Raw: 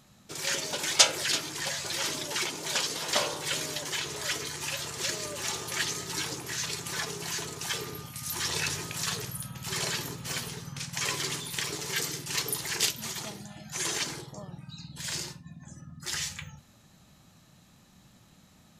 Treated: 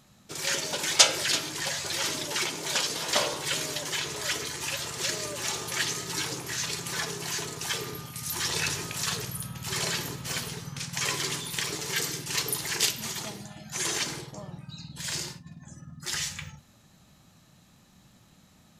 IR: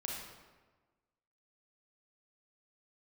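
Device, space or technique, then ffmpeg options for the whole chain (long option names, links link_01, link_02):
keyed gated reverb: -filter_complex "[0:a]asplit=3[link_01][link_02][link_03];[1:a]atrim=start_sample=2205[link_04];[link_02][link_04]afir=irnorm=-1:irlink=0[link_05];[link_03]apad=whole_len=828880[link_06];[link_05][link_06]sidechaingate=range=-33dB:threshold=-44dB:ratio=16:detection=peak,volume=-10.5dB[link_07];[link_01][link_07]amix=inputs=2:normalize=0"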